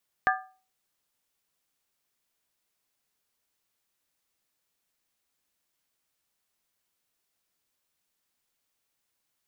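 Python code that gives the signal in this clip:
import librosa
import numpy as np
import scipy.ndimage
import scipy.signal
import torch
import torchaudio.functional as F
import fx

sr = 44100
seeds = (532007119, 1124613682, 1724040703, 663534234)

y = fx.strike_skin(sr, length_s=0.63, level_db=-21, hz=754.0, decay_s=0.39, tilt_db=0.5, modes=4)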